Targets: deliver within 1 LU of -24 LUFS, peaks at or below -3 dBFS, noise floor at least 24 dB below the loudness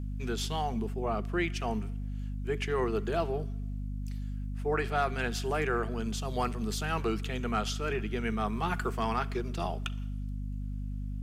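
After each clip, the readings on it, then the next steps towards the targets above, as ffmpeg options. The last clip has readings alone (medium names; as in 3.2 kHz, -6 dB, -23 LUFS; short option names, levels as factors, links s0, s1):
hum 50 Hz; highest harmonic 250 Hz; hum level -33 dBFS; loudness -33.0 LUFS; peak level -17.0 dBFS; loudness target -24.0 LUFS
-> -af "bandreject=f=50:t=h:w=6,bandreject=f=100:t=h:w=6,bandreject=f=150:t=h:w=6,bandreject=f=200:t=h:w=6,bandreject=f=250:t=h:w=6"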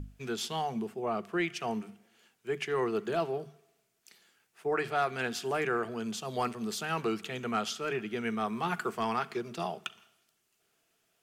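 hum not found; loudness -33.5 LUFS; peak level -18.0 dBFS; loudness target -24.0 LUFS
-> -af "volume=2.99"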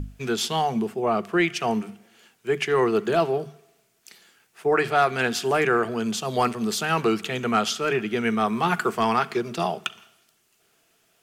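loudness -24.0 LUFS; peak level -8.5 dBFS; noise floor -66 dBFS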